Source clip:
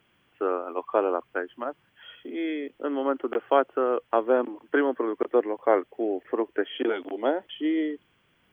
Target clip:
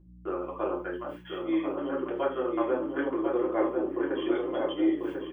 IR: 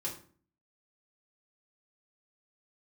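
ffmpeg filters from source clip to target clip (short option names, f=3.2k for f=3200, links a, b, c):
-filter_complex "[0:a]highpass=120,bandreject=f=60:t=h:w=6,bandreject=f=120:t=h:w=6,bandreject=f=180:t=h:w=6,bandreject=f=240:t=h:w=6,bandreject=f=300:t=h:w=6,bandreject=f=360:t=h:w=6,bandreject=f=420:t=h:w=6,bandreject=f=480:t=h:w=6,agate=range=-44dB:threshold=-55dB:ratio=16:detection=peak,equalizer=f=670:t=o:w=2.2:g=-4,areverse,acompressor=mode=upward:threshold=-28dB:ratio=2.5,areverse,atempo=1.6,aeval=exprs='val(0)+0.00398*(sin(2*PI*60*n/s)+sin(2*PI*2*60*n/s)/2+sin(2*PI*3*60*n/s)/3+sin(2*PI*4*60*n/s)/4+sin(2*PI*5*60*n/s)/5)':c=same,asplit=2[a][b];[b]adelay=1043,lowpass=f=2.1k:p=1,volume=-4dB,asplit=2[c][d];[d]adelay=1043,lowpass=f=2.1k:p=1,volume=0.49,asplit=2[e][f];[f]adelay=1043,lowpass=f=2.1k:p=1,volume=0.49,asplit=2[g][h];[h]adelay=1043,lowpass=f=2.1k:p=1,volume=0.49,asplit=2[i][j];[j]adelay=1043,lowpass=f=2.1k:p=1,volume=0.49,asplit=2[k][l];[l]adelay=1043,lowpass=f=2.1k:p=1,volume=0.49[m];[a][c][e][g][i][k][m]amix=inputs=7:normalize=0[n];[1:a]atrim=start_sample=2205,afade=t=out:st=0.15:d=0.01,atrim=end_sample=7056[o];[n][o]afir=irnorm=-1:irlink=0,volume=-4.5dB"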